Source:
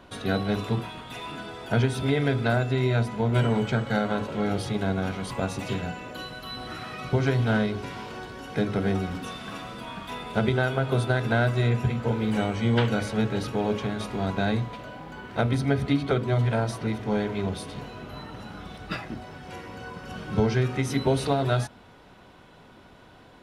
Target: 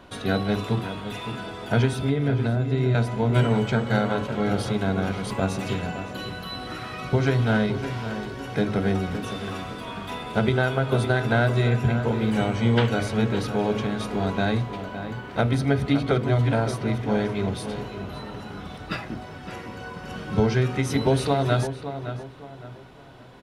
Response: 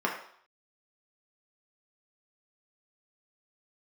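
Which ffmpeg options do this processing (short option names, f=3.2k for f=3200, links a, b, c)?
-filter_complex "[0:a]asettb=1/sr,asplit=3[a][b][c];[a]atrim=end=1.934[d];[b]atrim=start=1.93:end=2.95,asetpts=PTS-STARTPTS,afade=t=in:d=0.004:c=qsin,afade=t=out:st=1.016:d=0.004:c=qsin,acrossover=split=410[e][f];[f]acompressor=threshold=-36dB:ratio=6[g];[e][g]amix=inputs=2:normalize=0[h];[c]atrim=start=2.946[i];[d][h]acrossfade=d=0.004:c1=hsin:c2=qsin[j];[j][i]acrossfade=d=0.004:c1=qsin:c2=hsin,asplit=2[k][l];[l]adelay=563,lowpass=f=2.6k:p=1,volume=-10dB,asplit=2[m][n];[n]adelay=563,lowpass=f=2.6k:p=1,volume=0.35,asplit=2[o][p];[p]adelay=563,lowpass=f=2.6k:p=1,volume=0.35,asplit=2[q][r];[r]adelay=563,lowpass=f=2.6k:p=1,volume=0.35[s];[k][m][o][q][s]amix=inputs=5:normalize=0,volume=2dB"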